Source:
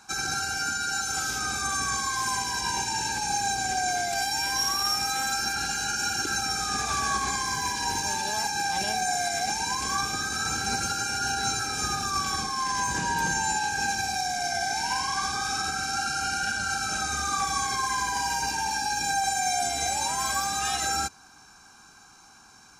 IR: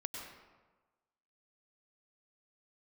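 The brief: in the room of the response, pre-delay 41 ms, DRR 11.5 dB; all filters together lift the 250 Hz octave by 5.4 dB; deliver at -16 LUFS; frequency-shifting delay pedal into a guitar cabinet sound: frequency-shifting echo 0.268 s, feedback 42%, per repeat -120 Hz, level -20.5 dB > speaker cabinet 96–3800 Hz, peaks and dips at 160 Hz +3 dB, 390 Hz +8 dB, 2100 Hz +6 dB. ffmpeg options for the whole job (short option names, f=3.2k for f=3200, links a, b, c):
-filter_complex "[0:a]equalizer=f=250:t=o:g=5,asplit=2[a][b];[1:a]atrim=start_sample=2205,adelay=41[c];[b][c]afir=irnorm=-1:irlink=0,volume=-11dB[d];[a][d]amix=inputs=2:normalize=0,asplit=4[e][f][g][h];[f]adelay=268,afreqshift=-120,volume=-20.5dB[i];[g]adelay=536,afreqshift=-240,volume=-28dB[j];[h]adelay=804,afreqshift=-360,volume=-35.6dB[k];[e][i][j][k]amix=inputs=4:normalize=0,highpass=96,equalizer=f=160:t=q:w=4:g=3,equalizer=f=390:t=q:w=4:g=8,equalizer=f=2.1k:t=q:w=4:g=6,lowpass=f=3.8k:w=0.5412,lowpass=f=3.8k:w=1.3066,volume=12dB"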